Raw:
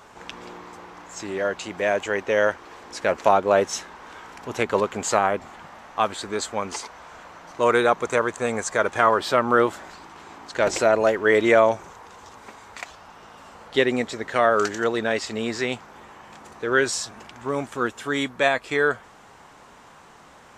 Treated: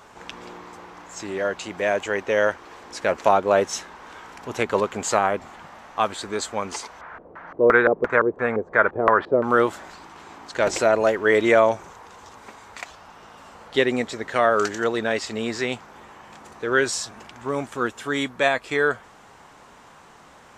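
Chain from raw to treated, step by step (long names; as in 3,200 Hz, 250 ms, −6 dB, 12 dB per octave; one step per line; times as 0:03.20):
0:07.01–0:09.44: auto-filter low-pass square 2.9 Hz 440–1,700 Hz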